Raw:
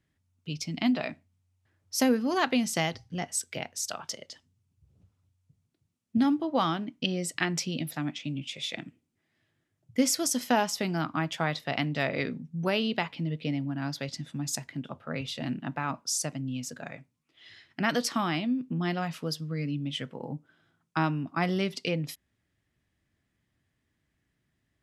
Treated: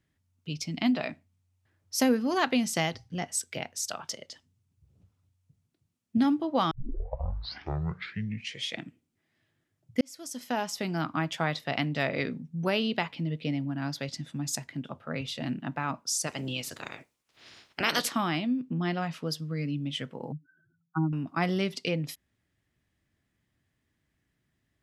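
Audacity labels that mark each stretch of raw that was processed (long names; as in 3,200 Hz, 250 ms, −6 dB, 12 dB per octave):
6.710000	6.710000	tape start 2.07 s
10.010000	11.070000	fade in
16.260000	18.090000	ceiling on every frequency bin ceiling under each frame's peak by 22 dB
18.610000	19.300000	high-shelf EQ 9,100 Hz −11 dB
20.320000	21.130000	expanding power law on the bin magnitudes exponent 4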